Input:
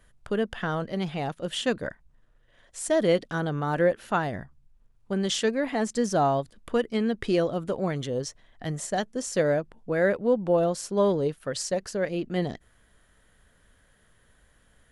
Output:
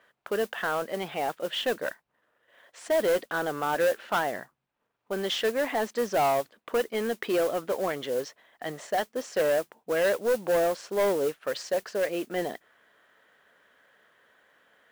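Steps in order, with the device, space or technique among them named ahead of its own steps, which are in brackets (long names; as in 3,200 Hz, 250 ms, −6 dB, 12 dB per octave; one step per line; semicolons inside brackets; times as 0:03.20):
carbon microphone (band-pass filter 450–3,000 Hz; soft clipping −24.5 dBFS, distortion −11 dB; noise that follows the level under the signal 18 dB)
level +5 dB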